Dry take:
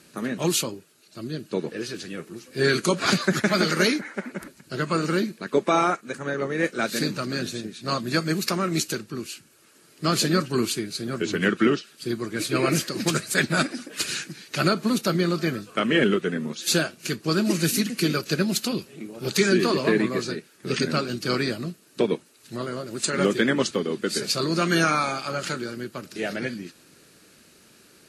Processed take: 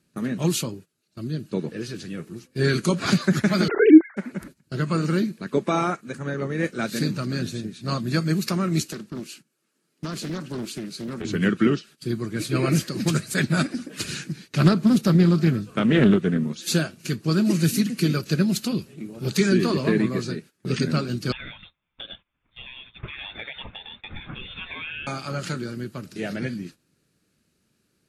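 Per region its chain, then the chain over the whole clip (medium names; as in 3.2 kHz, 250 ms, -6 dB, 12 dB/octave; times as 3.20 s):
3.68–4.17 s: formants replaced by sine waves + peaking EQ 340 Hz +14.5 dB 0.89 oct
8.85–11.25 s: high-pass 170 Hz 24 dB/octave + compression 4:1, threshold -28 dBFS + loudspeaker Doppler distortion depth 0.39 ms
13.74–16.44 s: bass shelf 420 Hz +4.5 dB + loudspeaker Doppler distortion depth 0.21 ms
21.32–25.07 s: high-pass 700 Hz + frequency inversion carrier 3.9 kHz + compression 2:1, threshold -33 dBFS
whole clip: gate -43 dBFS, range -15 dB; tone controls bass +11 dB, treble 0 dB; trim -3.5 dB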